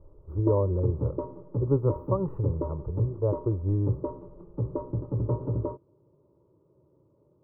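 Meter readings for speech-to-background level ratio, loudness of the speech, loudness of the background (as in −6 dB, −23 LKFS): 5.0 dB, −29.0 LKFS, −34.0 LKFS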